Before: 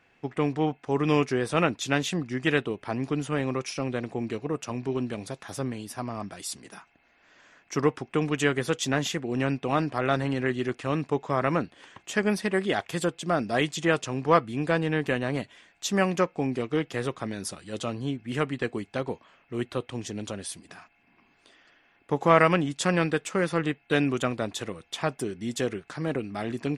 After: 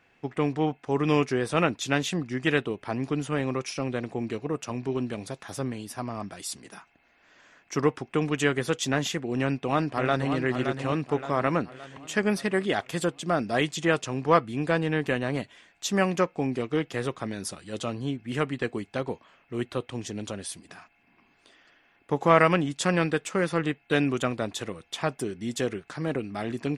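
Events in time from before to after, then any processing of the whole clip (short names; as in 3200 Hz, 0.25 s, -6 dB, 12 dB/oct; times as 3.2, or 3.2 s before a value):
9.4–10.35 echo throw 0.57 s, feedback 50%, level -7.5 dB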